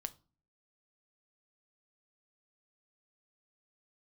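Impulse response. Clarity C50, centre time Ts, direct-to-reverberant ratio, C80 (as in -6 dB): 20.5 dB, 2 ms, 11.0 dB, 26.5 dB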